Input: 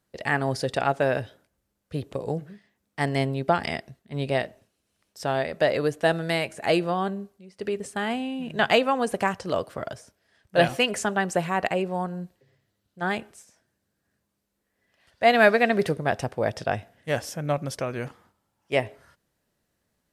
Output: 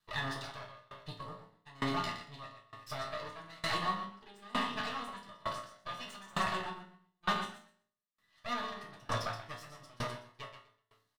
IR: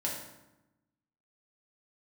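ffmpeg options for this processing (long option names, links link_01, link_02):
-filter_complex "[0:a]alimiter=limit=-16.5dB:level=0:latency=1:release=65,lowshelf=frequency=430:gain=-7,aecho=1:1:224|448|672|896:0.562|0.169|0.0506|0.0152,aeval=exprs='max(val(0),0)':channel_layout=same,equalizer=frequency=125:width_type=o:width=1:gain=9,equalizer=frequency=500:width_type=o:width=1:gain=-8,equalizer=frequency=1000:width_type=o:width=1:gain=9,equalizer=frequency=4000:width_type=o:width=1:gain=10,atempo=1.8[link_01];[1:a]atrim=start_sample=2205,asetrate=88200,aresample=44100[link_02];[link_01][link_02]afir=irnorm=-1:irlink=0,aeval=exprs='val(0)*pow(10,-26*if(lt(mod(1.1*n/s,1),2*abs(1.1)/1000),1-mod(1.1*n/s,1)/(2*abs(1.1)/1000),(mod(1.1*n/s,1)-2*abs(1.1)/1000)/(1-2*abs(1.1)/1000))/20)':channel_layout=same,volume=3dB"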